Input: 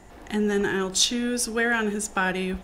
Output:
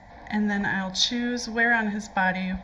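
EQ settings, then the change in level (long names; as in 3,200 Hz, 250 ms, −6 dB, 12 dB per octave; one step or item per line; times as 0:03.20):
high-pass filter 92 Hz 6 dB per octave
high-frequency loss of the air 130 metres
phaser with its sweep stopped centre 1,900 Hz, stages 8
+5.5 dB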